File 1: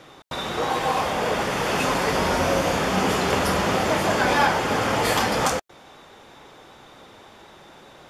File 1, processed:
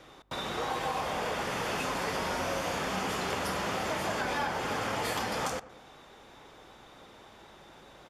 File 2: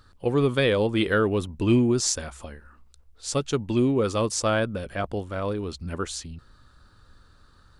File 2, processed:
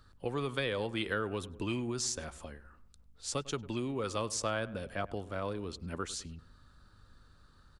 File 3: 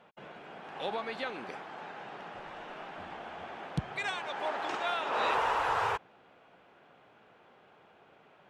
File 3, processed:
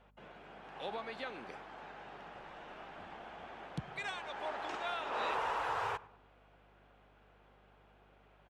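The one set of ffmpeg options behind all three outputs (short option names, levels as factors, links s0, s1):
-filter_complex "[0:a]asplit=2[s0][s1];[s1]adelay=100,lowpass=f=1900:p=1,volume=0.112,asplit=2[s2][s3];[s3]adelay=100,lowpass=f=1900:p=1,volume=0.45,asplit=2[s4][s5];[s5]adelay=100,lowpass=f=1900:p=1,volume=0.45,asplit=2[s6][s7];[s7]adelay=100,lowpass=f=1900:p=1,volume=0.45[s8];[s0][s2][s4][s6][s8]amix=inputs=5:normalize=0,acrossover=split=100|710[s9][s10][s11];[s9]acompressor=threshold=0.00631:ratio=4[s12];[s10]acompressor=threshold=0.0316:ratio=4[s13];[s11]acompressor=threshold=0.0501:ratio=4[s14];[s12][s13][s14]amix=inputs=3:normalize=0,aeval=exprs='val(0)+0.000891*(sin(2*PI*50*n/s)+sin(2*PI*2*50*n/s)/2+sin(2*PI*3*50*n/s)/3+sin(2*PI*4*50*n/s)/4+sin(2*PI*5*50*n/s)/5)':c=same,volume=0.501"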